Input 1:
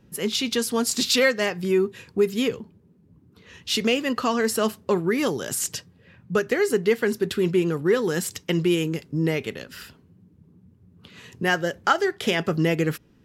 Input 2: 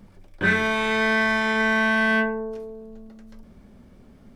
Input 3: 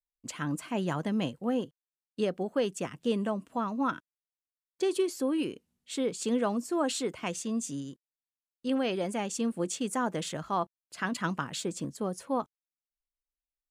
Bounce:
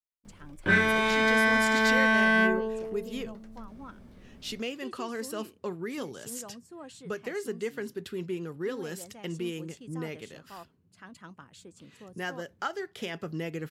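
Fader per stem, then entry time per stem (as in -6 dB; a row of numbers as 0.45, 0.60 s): -13.0, -2.0, -16.5 dB; 0.75, 0.25, 0.00 s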